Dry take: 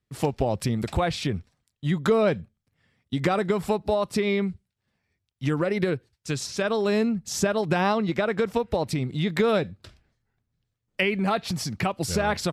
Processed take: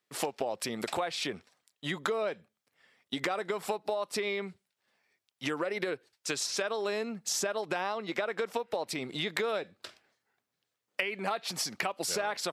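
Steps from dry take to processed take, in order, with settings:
high-pass filter 460 Hz 12 dB per octave
downward compressor, threshold −34 dBFS, peak gain reduction 14.5 dB
level +4.5 dB

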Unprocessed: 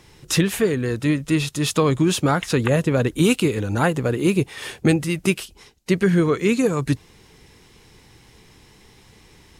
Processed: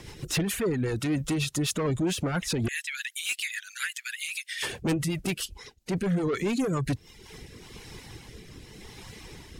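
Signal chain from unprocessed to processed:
0:02.68–0:04.63: Butterworth high-pass 1,700 Hz 48 dB per octave
soft clipping −19.5 dBFS, distortion −9 dB
reverb reduction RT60 0.7 s
brickwall limiter −29.5 dBFS, peak gain reduction 11.5 dB
rotating-speaker cabinet horn 7.5 Hz, later 0.85 Hz, at 0:06.72
level +8.5 dB

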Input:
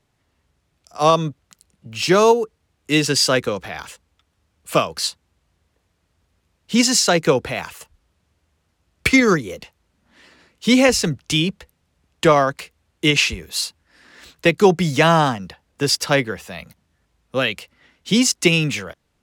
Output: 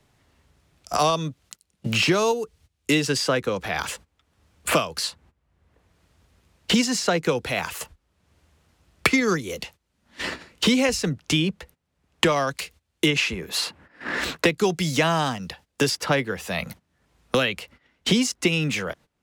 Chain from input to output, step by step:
noise gate −49 dBFS, range −20 dB
multiband upward and downward compressor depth 100%
level −4.5 dB

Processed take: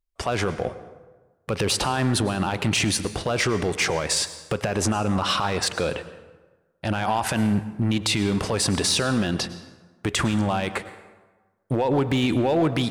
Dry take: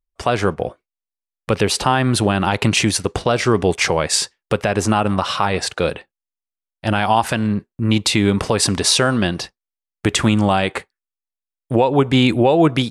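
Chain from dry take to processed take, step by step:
brickwall limiter −12.5 dBFS, peak gain reduction 9 dB
hard clipping −15 dBFS, distortion −22 dB
convolution reverb RT60 1.3 s, pre-delay 93 ms, DRR 13 dB

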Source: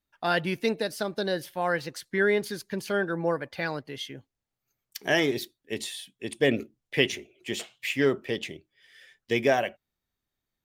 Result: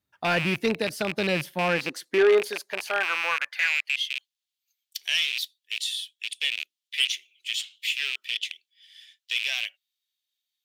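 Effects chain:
loose part that buzzes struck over −40 dBFS, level −18 dBFS
high-pass filter sweep 96 Hz → 3,300 Hz, 0:01.05–0:04.14
soft clipping −14.5 dBFS, distortion −16 dB
level +1.5 dB

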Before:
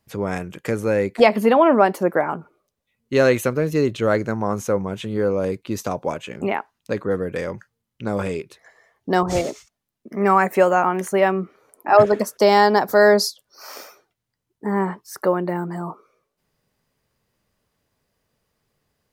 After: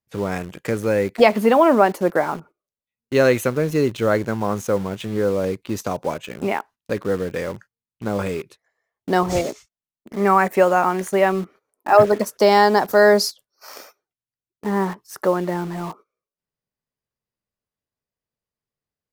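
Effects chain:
noise gate −42 dBFS, range −17 dB
in parallel at −8.5 dB: bit reduction 5 bits
on the sum: level −2.5 dB

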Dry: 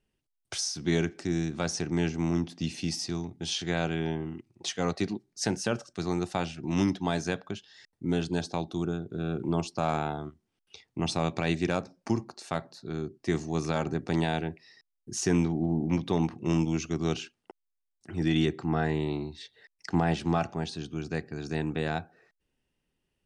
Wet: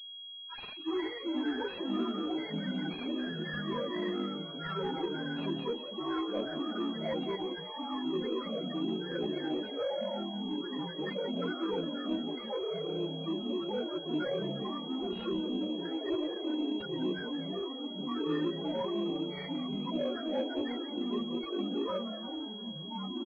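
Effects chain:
partials spread apart or drawn together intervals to 75%
Butterworth high-pass 330 Hz 48 dB per octave
parametric band 460 Hz −4 dB 1.6 octaves
in parallel at −1.5 dB: downward compressor, threshold −46 dBFS, peak gain reduction 16.5 dB
on the sum: spectral peaks only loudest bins 4
soft clipping −34 dBFS, distortion −16 dB
delay with pitch and tempo change per echo 261 ms, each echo −4 semitones, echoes 3
on a send: echo with shifted repeats 176 ms, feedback 55%, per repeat +110 Hz, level −12.5 dB
on the sum: switching amplifier with a slow clock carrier 3,300 Hz
level +5.5 dB

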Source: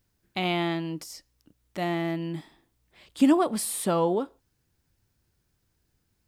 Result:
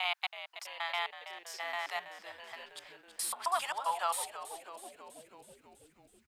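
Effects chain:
slices reordered back to front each 133 ms, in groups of 4
Butterworth high-pass 810 Hz 36 dB per octave
high-shelf EQ 5,500 Hz −6 dB
on a send: echo with shifted repeats 325 ms, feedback 64%, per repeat −89 Hz, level −12 dB

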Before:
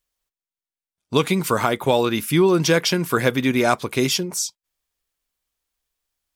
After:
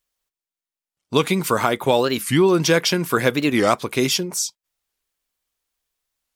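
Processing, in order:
low-shelf EQ 110 Hz −5.5 dB
wow of a warped record 45 rpm, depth 250 cents
level +1 dB

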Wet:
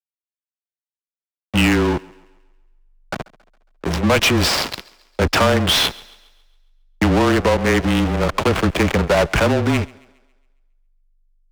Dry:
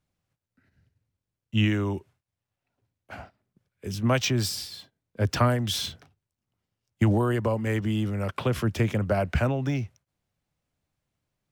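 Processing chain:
dynamic equaliser 2,600 Hz, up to +5 dB, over −47 dBFS, Q 1.8
in parallel at +1 dB: downward compressor 16 to 1, threshold −36 dBFS, peak gain reduction 20.5 dB
on the sum: slack as between gear wheels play −22 dBFS
mid-hump overdrive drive 32 dB, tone 5,400 Hz, clips at −7 dBFS
frequency shifter −24 Hz
on a send: feedback echo with a high-pass in the loop 137 ms, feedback 46%, high-pass 180 Hz, level −23 dB

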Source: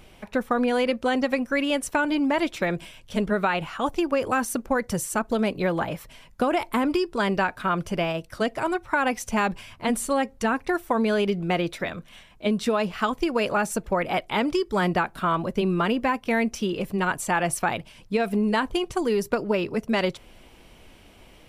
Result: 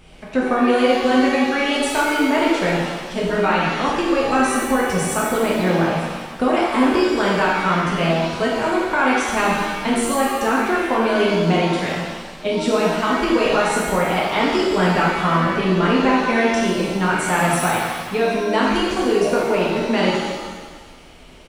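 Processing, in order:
downsampling to 22,050 Hz
reverb with rising layers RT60 1.4 s, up +7 semitones, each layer −8 dB, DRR −5 dB

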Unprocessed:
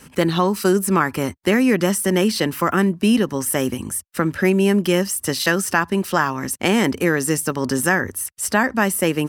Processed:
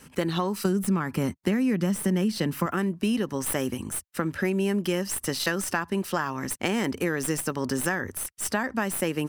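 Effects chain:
stylus tracing distortion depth 0.025 ms
0:00.65–0:02.66: parametric band 180 Hz +10 dB 1.1 octaves
downward compressor 6 to 1, threshold −16 dBFS, peak gain reduction 9.5 dB
level −5.5 dB

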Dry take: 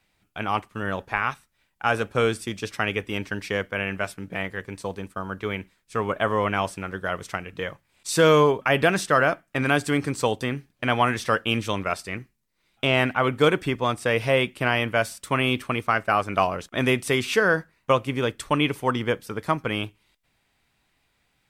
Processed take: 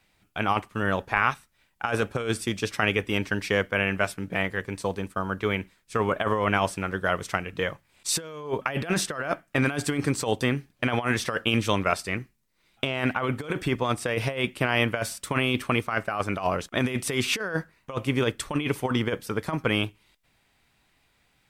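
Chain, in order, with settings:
compressor whose output falls as the input rises −24 dBFS, ratio −0.5

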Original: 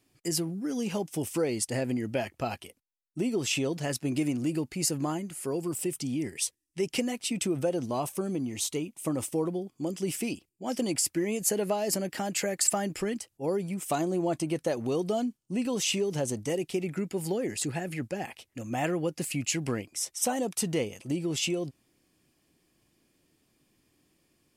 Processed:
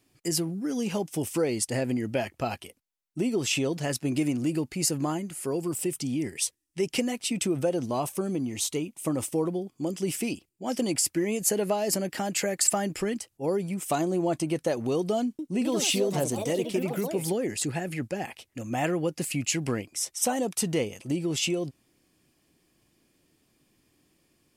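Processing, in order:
0:15.23–0:17.67: delay with pitch and tempo change per echo 158 ms, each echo +4 semitones, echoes 2, each echo −6 dB
level +2 dB

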